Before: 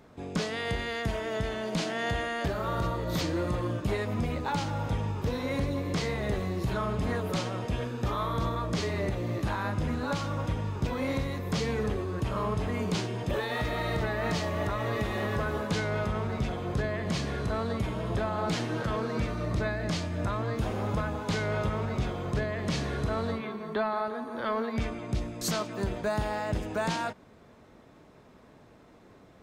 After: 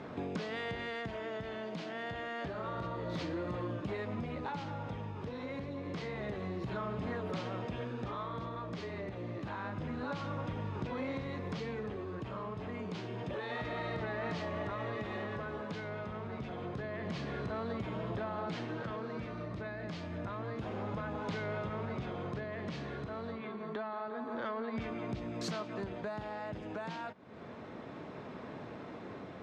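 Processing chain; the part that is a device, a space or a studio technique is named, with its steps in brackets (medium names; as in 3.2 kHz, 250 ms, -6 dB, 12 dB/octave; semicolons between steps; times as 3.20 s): AM radio (band-pass 110–3600 Hz; compression 5:1, threshold -47 dBFS, peak gain reduction 19 dB; saturation -35.5 dBFS, distortion -27 dB; tremolo 0.28 Hz, depth 34%); trim +10.5 dB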